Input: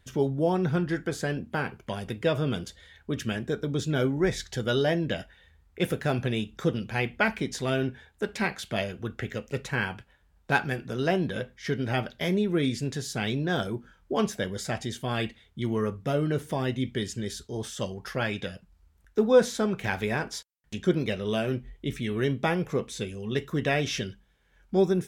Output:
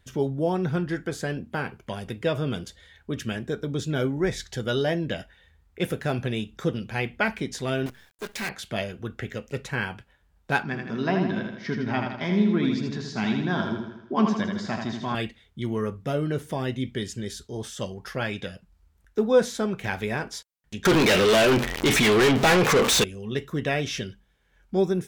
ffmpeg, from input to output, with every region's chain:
ffmpeg -i in.wav -filter_complex "[0:a]asettb=1/sr,asplit=3[link_01][link_02][link_03];[link_01]atrim=end=7.864[link_04];[link_02]atrim=start=7.86:end=8.49,asetpts=PTS-STARTPTS,afade=type=in:duration=0.004:curve=qsin,afade=type=out:start_time=0.626:duration=0.004:curve=qsin,volume=27dB,asoftclip=hard,volume=-27dB,tiltshelf=frequency=810:gain=-3.5,acrusher=bits=7:dc=4:mix=0:aa=0.000001[link_05];[link_03]atrim=start=8.486[link_06];[link_04][link_05]acrossfade=duration=0.004:curve1=hsin:curve2=qsin[link_07];[link_07][link_06]acrossfade=duration=0.004:curve1=qsin:curve2=hsin,asettb=1/sr,asplit=3[link_08][link_09][link_10];[link_08]atrim=end=10.634[link_11];[link_09]atrim=start=10.63:end=15.15,asetpts=PTS-STARTPTS,afade=type=in:duration=0.004:curve=qsin,afade=type=out:start_time=4.516:duration=0.004:curve=qsin,highpass=100,equalizer=frequency=130:width_type=q:width=4:gain=-3,equalizer=frequency=220:width_type=q:width=4:gain=8,equalizer=frequency=500:width_type=q:width=4:gain=-9,equalizer=frequency=1000:width_type=q:width=4:gain=9,equalizer=frequency=3100:width_type=q:width=4:gain=-5,lowpass=frequency=5200:width=0.5412,lowpass=frequency=5200:width=1.3066,aecho=1:1:80|160|240|320|400|480|560:0.562|0.292|0.152|0.0791|0.0411|0.0214|0.0111,atrim=end_sample=199332[link_12];[link_10]atrim=start=15.146[link_13];[link_11][link_12]acrossfade=duration=0.004:curve1=hsin:curve2=qsin[link_14];[link_14][link_13]acrossfade=duration=0.004:curve1=qsin:curve2=hsin,asettb=1/sr,asplit=3[link_15][link_16][link_17];[link_15]atrim=end=20.854[link_18];[link_16]atrim=start=20.85:end=23.04,asetpts=PTS-STARTPTS,afade=type=in:duration=0.004:curve=qsin,afade=type=out:start_time=2.186:duration=0.004:curve=qsin,aeval=exprs='val(0)+0.5*0.01*sgn(val(0))':channel_layout=same,asplit=2[link_19][link_20];[link_20]highpass=frequency=720:poles=1,volume=34dB,asoftclip=type=tanh:threshold=-11.5dB[link_21];[link_19][link_21]amix=inputs=2:normalize=0,lowpass=frequency=6300:poles=1,volume=-6dB[link_22];[link_17]atrim=start=23.036[link_23];[link_18][link_22]acrossfade=duration=0.004:curve1=hsin:curve2=qsin[link_24];[link_24][link_23]acrossfade=duration=0.004:curve1=qsin:curve2=hsin" out.wav

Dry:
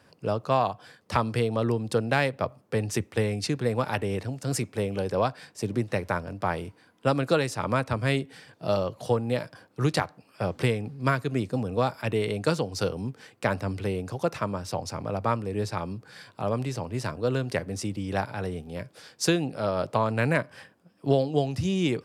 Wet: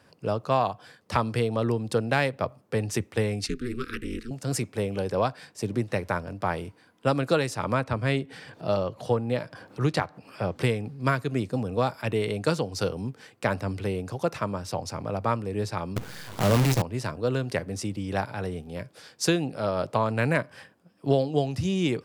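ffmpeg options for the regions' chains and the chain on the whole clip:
ffmpeg -i in.wav -filter_complex "[0:a]asettb=1/sr,asplit=3[link_01][link_02][link_03];[link_01]atrim=end=3.464[link_04];[link_02]atrim=start=3.46:end=4.31,asetpts=PTS-STARTPTS,afade=type=in:duration=0.004:curve=qsin,afade=type=out:start_time=0.846:duration=0.004:curve=qsin,aeval=exprs='val(0)*sin(2*PI*120*n/s)':channel_layout=same,asuperstop=centerf=750:order=12:qfactor=1[link_05];[link_03]atrim=start=4.306[link_06];[link_04][link_05]acrossfade=duration=0.004:curve1=hsin:curve2=qsin[link_07];[link_07][link_06]acrossfade=duration=0.004:curve1=qsin:curve2=hsin,asettb=1/sr,asplit=3[link_08][link_09][link_10];[link_08]atrim=end=7.754[link_11];[link_09]atrim=start=7.75:end=10.56,asetpts=PTS-STARTPTS,afade=type=in:duration=0.004:curve=qsin,afade=type=out:start_time=2.806:duration=0.004:curve=qsin,highshelf=frequency=5900:gain=-8,acompressor=mode=upward:threshold=-35dB:ratio=2.5:attack=3.2:release=140:knee=2.83:detection=peak[link_12];[link_10]atrim=start=10.556[link_13];[link_11][link_12]acrossfade=duration=0.004:curve1=hsin:curve2=qsin[link_14];[link_14][link_13]acrossfade=duration=0.004:curve1=qsin:curve2=hsin,asettb=1/sr,asplit=3[link_15][link_16][link_17];[link_15]atrim=end=15.964[link_18];[link_16]atrim=start=15.96:end=16.82,asetpts=PTS-STARTPTS,afade=type=in:duration=0.004:curve=qsin,afade=type=out:start_time=0.856:duration=0.004:curve=qsin,aeval=exprs='val(0)+0.5*0.0158*sgn(val(0))':channel_layout=same,lowshelf=frequency=440:gain=8,acrusher=bits=5:dc=4:mix=0:aa=0.000001[link_19];[link_17]atrim=start=16.816[link_20];[link_18][link_19]acrossfade=duration=0.004:curve1=hsin:curve2=qsin[link_21];[link_21][link_20]acrossfade=duration=0.004:curve1=qsin:curve2=hsin" out.wav

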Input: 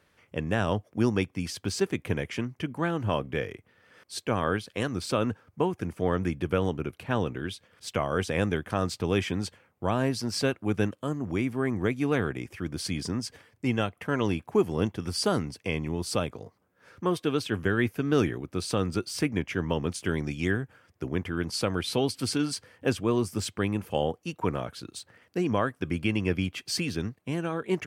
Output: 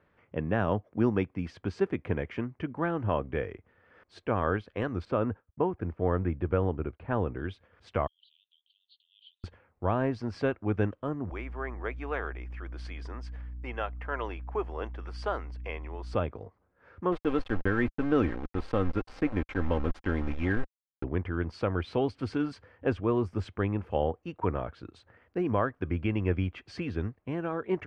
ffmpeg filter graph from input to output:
ffmpeg -i in.wav -filter_complex "[0:a]asettb=1/sr,asplit=3[link_01][link_02][link_03];[link_01]atrim=end=5.054[link_04];[link_02]atrim=start=5.05:end=7.39,asetpts=PTS-STARTPTS,afade=type=in:duration=0.004:curve=qsin,afade=type=out:start_time=2.336:duration=0.004:curve=qsin,lowpass=frequency=2000:poles=1,agate=range=-33dB:threshold=-48dB:ratio=3:release=100:detection=peak[link_05];[link_03]atrim=start=7.386[link_06];[link_04][link_05]acrossfade=duration=0.004:curve1=hsin:curve2=qsin[link_07];[link_07][link_06]acrossfade=duration=0.004:curve1=qsin:curve2=hsin,asettb=1/sr,asplit=3[link_08][link_09][link_10];[link_08]atrim=end=8.074[link_11];[link_09]atrim=start=8.07:end=9.44,asetpts=PTS-STARTPTS,afade=type=in:duration=0.004:curve=qsin,afade=type=out:start_time=1.366:duration=0.004:curve=qsin,acompressor=threshold=-33dB:ratio=3:attack=3.2:release=140:knee=1:detection=peak,asuperpass=centerf=3600:order=12:qfactor=2.4[link_12];[link_10]atrim=start=9.436[link_13];[link_11][link_12]acrossfade=duration=0.004:curve1=hsin:curve2=qsin[link_14];[link_14][link_13]acrossfade=duration=0.004:curve1=qsin:curve2=hsin,asettb=1/sr,asplit=3[link_15][link_16][link_17];[link_15]atrim=end=11.304[link_18];[link_16]atrim=start=11.3:end=16.14,asetpts=PTS-STARTPTS,afade=type=in:duration=0.004:curve=qsin,afade=type=out:start_time=4.836:duration=0.004:curve=qsin,highpass=610,aeval=exprs='val(0)+0.00501*(sin(2*PI*60*n/s)+sin(2*PI*2*60*n/s)/2+sin(2*PI*3*60*n/s)/3+sin(2*PI*4*60*n/s)/4+sin(2*PI*5*60*n/s)/5)':channel_layout=same[link_19];[link_17]atrim=start=16.136[link_20];[link_18][link_19]acrossfade=duration=0.004:curve1=hsin:curve2=qsin[link_21];[link_21][link_20]acrossfade=duration=0.004:curve1=qsin:curve2=hsin,asettb=1/sr,asplit=3[link_22][link_23][link_24];[link_22]atrim=end=17.124[link_25];[link_23]atrim=start=17.12:end=21.04,asetpts=PTS-STARTPTS,afade=type=in:duration=0.004:curve=qsin,afade=type=out:start_time=3.916:duration=0.004:curve=qsin,aeval=exprs='val(0)*gte(abs(val(0)),0.0224)':channel_layout=same,aecho=1:1:3.8:0.37,atrim=end_sample=172872[link_26];[link_24]atrim=start=21.036[link_27];[link_25][link_26]acrossfade=duration=0.004:curve1=hsin:curve2=qsin[link_28];[link_28][link_27]acrossfade=duration=0.004:curve1=qsin:curve2=hsin,lowpass=1700,asubboost=boost=8.5:cutoff=50" out.wav

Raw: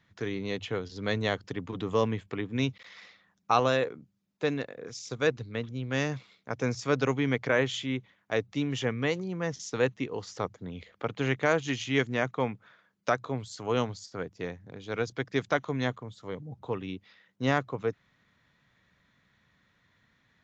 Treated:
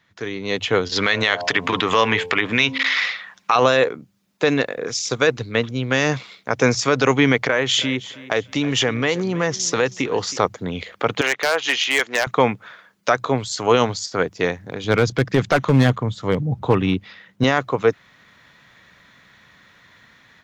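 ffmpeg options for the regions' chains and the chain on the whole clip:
ffmpeg -i in.wav -filter_complex "[0:a]asettb=1/sr,asplit=3[link_01][link_02][link_03];[link_01]atrim=end=0.924[link_04];[link_02]atrim=start=0.92:end=3.56,asetpts=PTS-STARTPTS,afade=type=in:duration=0.004:curve=qsin,afade=type=out:start_time=2.636:duration=0.004:curve=qsin,equalizer=frequency=2200:width=0.38:gain=14.5,bandreject=frequency=88.39:width_type=h:width=4,bandreject=frequency=176.78:width_type=h:width=4,bandreject=frequency=265.17:width_type=h:width=4,bandreject=frequency=353.56:width_type=h:width=4,bandreject=frequency=441.95:width_type=h:width=4,bandreject=frequency=530.34:width_type=h:width=4,bandreject=frequency=618.73:width_type=h:width=4,bandreject=frequency=707.12:width_type=h:width=4,bandreject=frequency=795.51:width_type=h:width=4,bandreject=frequency=883.9:width_type=h:width=4,bandreject=frequency=972.29:width_type=h:width=4,bandreject=frequency=1060.68:width_type=h:width=4,acompressor=threshold=-31dB:ratio=3:attack=3.2:release=140:knee=1:detection=peak[link_05];[link_03]atrim=start=3.556[link_06];[link_04][link_05]acrossfade=duration=0.004:curve1=hsin:curve2=qsin[link_07];[link_07][link_06]acrossfade=duration=0.004:curve1=qsin:curve2=hsin,asettb=1/sr,asplit=3[link_08][link_09][link_10];[link_08]atrim=end=7.464[link_11];[link_09]atrim=start=7.46:end=10.37,asetpts=PTS-STARTPTS,afade=type=in:duration=0.004:curve=qsin,afade=type=out:start_time=2.906:duration=0.004:curve=qsin,acompressor=threshold=-31dB:ratio=4:attack=3.2:release=140:knee=1:detection=peak,aecho=1:1:320|640|960:0.126|0.0365|0.0106,atrim=end_sample=128331[link_12];[link_10]atrim=start=10.366[link_13];[link_11][link_12]acrossfade=duration=0.004:curve1=hsin:curve2=qsin[link_14];[link_14][link_13]acrossfade=duration=0.004:curve1=qsin:curve2=hsin,asettb=1/sr,asplit=3[link_15][link_16][link_17];[link_15]atrim=end=11.214[link_18];[link_16]atrim=start=11.21:end=12.27,asetpts=PTS-STARTPTS,afade=type=in:duration=0.004:curve=qsin,afade=type=out:start_time=1.056:duration=0.004:curve=qsin,highpass=610,lowpass=4600,acompressor=threshold=-31dB:ratio=2.5:attack=3.2:release=140:knee=1:detection=peak,aeval=exprs='0.0473*(abs(mod(val(0)/0.0473+3,4)-2)-1)':channel_layout=same[link_19];[link_17]atrim=start=12.266[link_20];[link_18][link_19]acrossfade=duration=0.004:curve1=hsin:curve2=qsin[link_21];[link_21][link_20]acrossfade=duration=0.004:curve1=qsin:curve2=hsin,asettb=1/sr,asplit=3[link_22][link_23][link_24];[link_22]atrim=end=14.844[link_25];[link_23]atrim=start=14.84:end=17.44,asetpts=PTS-STARTPTS,afade=type=in:duration=0.004:curve=qsin,afade=type=out:start_time=2.596:duration=0.004:curve=qsin,bass=frequency=250:gain=10,treble=frequency=4000:gain=-4,aeval=exprs='clip(val(0),-1,0.0562)':channel_layout=same[link_26];[link_24]atrim=start=17.436[link_27];[link_25][link_26]acrossfade=duration=0.004:curve1=hsin:curve2=qsin[link_28];[link_28][link_27]acrossfade=duration=0.004:curve1=qsin:curve2=hsin,lowshelf=frequency=300:gain=-9,dynaudnorm=framelen=400:gausssize=3:maxgain=11.5dB,alimiter=level_in=10dB:limit=-1dB:release=50:level=0:latency=1,volume=-3dB" out.wav

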